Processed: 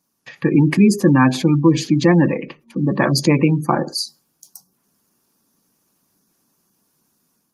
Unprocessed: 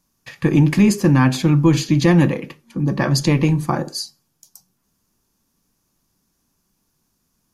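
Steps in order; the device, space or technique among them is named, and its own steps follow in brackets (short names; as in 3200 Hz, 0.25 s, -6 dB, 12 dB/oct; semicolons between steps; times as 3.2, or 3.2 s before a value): 2.86–3.98 dynamic EQ 7300 Hz, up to -3 dB, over -41 dBFS, Q 5.4; noise-suppressed video call (HPF 180 Hz 12 dB/oct; spectral gate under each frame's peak -25 dB strong; AGC gain up to 6 dB; Opus 32 kbps 48000 Hz)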